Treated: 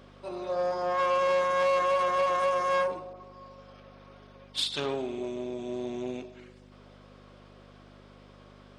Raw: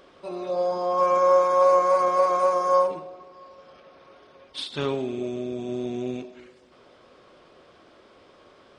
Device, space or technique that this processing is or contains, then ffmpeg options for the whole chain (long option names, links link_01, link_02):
valve amplifier with mains hum: -filter_complex "[0:a]aeval=exprs='(tanh(11.2*val(0)+0.5)-tanh(0.5))/11.2':channel_layout=same,aeval=exprs='val(0)+0.00708*(sin(2*PI*50*n/s)+sin(2*PI*2*50*n/s)/2+sin(2*PI*3*50*n/s)/3+sin(2*PI*4*50*n/s)/4+sin(2*PI*5*50*n/s)/5)':channel_layout=same,highpass=frequency=270:poles=1,asettb=1/sr,asplit=3[link_01][link_02][link_03];[link_01]atrim=end=3.134[link_04];[link_02]atrim=start=3.13:end=4.8,asetpts=PTS-STARTPTS,afade=type=in:duration=0.004:curve=qsin,afade=type=out:start_time=1.666:duration=0.004:curve=qsin,adynamicequalizer=threshold=0.00282:dfrequency=2300:dqfactor=0.7:tfrequency=2300:tqfactor=0.7:attack=5:release=100:ratio=0.375:range=4:mode=boostabove:tftype=highshelf[link_05];[link_03]atrim=start=4.796[link_06];[link_04][link_05]acrossfade=duration=0.004:curve1=hsin:curve2=qsin[link_07];[link_07][link_06]acrossfade=duration=0.004:curve1=qsin:curve2=hsin"